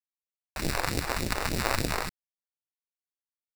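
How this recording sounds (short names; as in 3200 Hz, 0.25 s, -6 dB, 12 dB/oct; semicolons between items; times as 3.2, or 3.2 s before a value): aliases and images of a low sample rate 3200 Hz, jitter 0%; phasing stages 2, 3.4 Hz, lowest notch 140–1200 Hz; a quantiser's noise floor 8-bit, dither none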